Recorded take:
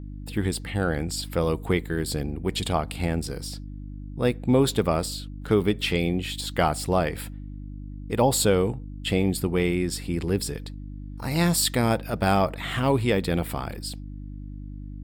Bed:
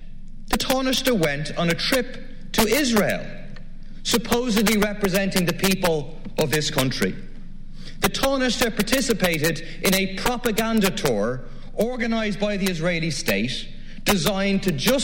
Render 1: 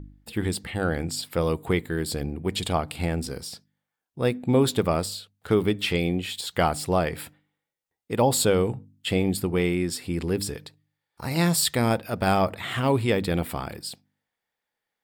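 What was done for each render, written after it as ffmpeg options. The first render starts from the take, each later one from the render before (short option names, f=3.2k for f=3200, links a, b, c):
-af "bandreject=f=50:t=h:w=4,bandreject=f=100:t=h:w=4,bandreject=f=150:t=h:w=4,bandreject=f=200:t=h:w=4,bandreject=f=250:t=h:w=4,bandreject=f=300:t=h:w=4"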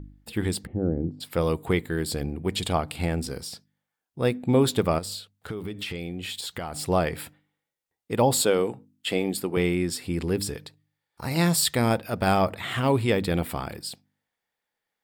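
-filter_complex "[0:a]asplit=3[a][b][c];[a]afade=t=out:st=0.65:d=0.02[d];[b]lowpass=f=350:t=q:w=1.5,afade=t=in:st=0.65:d=0.02,afade=t=out:st=1.2:d=0.02[e];[c]afade=t=in:st=1.2:d=0.02[f];[d][e][f]amix=inputs=3:normalize=0,asettb=1/sr,asplit=3[g][h][i];[g]atrim=end=4.984[j];[h]atrim=start=4.98:end=6.79,asetpts=PTS-STARTPTS,afade=t=in:d=0.004:c=qsin,afade=t=out:st=1.806:d=0.004:c=qsin,acompressor=threshold=-29dB:ratio=8:attack=3.2:release=140:knee=1:detection=peak[k];[i]atrim=start=6.786[l];[j][k]acrossfade=d=0.004:c1=hsin:c2=qsin[m];[m][l]acrossfade=d=0.004:c1=qsin:c2=hsin,asettb=1/sr,asplit=3[n][o][p];[n]atrim=end=8.414[q];[o]atrim=start=8.41:end=9.57,asetpts=PTS-STARTPTS,afade=t=in:d=0.004:c=qsin,afade=t=out:st=1.156:d=0.004:c=qsin,highpass=240[r];[p]atrim=start=9.566[s];[q][r]acrossfade=d=0.004:c1=hsin:c2=qsin[t];[t][s]acrossfade=d=0.004:c1=qsin:c2=hsin"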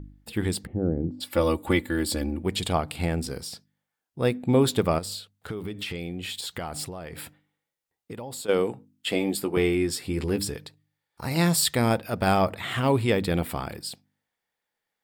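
-filter_complex "[0:a]asettb=1/sr,asplit=3[a][b][c];[a]atrim=end=1.104[d];[b]atrim=start=1.1:end=2.43,asetpts=PTS-STARTPTS,afade=t=in:d=0.004:c=qsin,afade=t=out:st=1.326:d=0.004:c=qsin,aecho=1:1:3.5:0.91,atrim=end_sample=58653[e];[c]atrim=start=2.426[f];[d][e]acrossfade=d=0.004:c1=hsin:c2=qsin[g];[g][f]acrossfade=d=0.004:c1=qsin:c2=hsin,asplit=3[h][i][j];[h]afade=t=out:st=6.84:d=0.02[k];[i]acompressor=threshold=-33dB:ratio=12:attack=3.2:release=140:knee=1:detection=peak,afade=t=in:st=6.84:d=0.02,afade=t=out:st=8.48:d=0.02[l];[j]afade=t=in:st=8.48:d=0.02[m];[k][l][m]amix=inputs=3:normalize=0,asettb=1/sr,asplit=3[n][o][p];[n]atrim=end=9.114[q];[o]atrim=start=9.11:end=10.45,asetpts=PTS-STARTPTS,afade=t=in:d=0.004:c=qsin,afade=t=out:st=1.336:d=0.004:c=qsin,asplit=2[r][s];[s]adelay=14,volume=-7dB[t];[r][t]amix=inputs=2:normalize=0,atrim=end_sample=59094[u];[p]atrim=start=10.446[v];[q][u]acrossfade=d=0.004:c1=hsin:c2=qsin[w];[w][v]acrossfade=d=0.004:c1=qsin:c2=hsin"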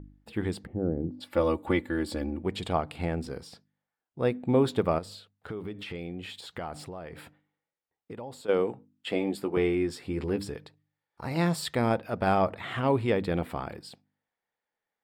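-af "lowpass=f=1.4k:p=1,lowshelf=f=270:g=-6"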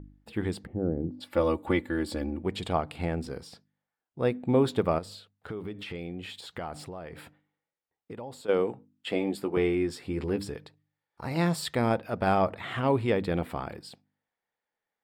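-af anull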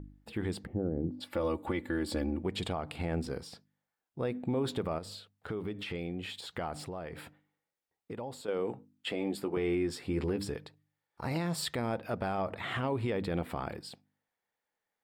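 -af "alimiter=limit=-23.5dB:level=0:latency=1:release=92"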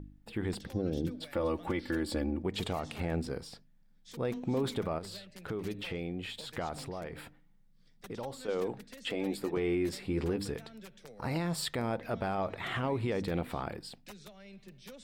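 -filter_complex "[1:a]volume=-30.5dB[a];[0:a][a]amix=inputs=2:normalize=0"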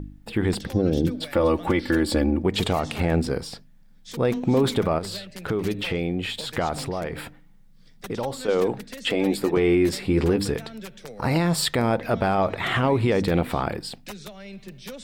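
-af "volume=11.5dB"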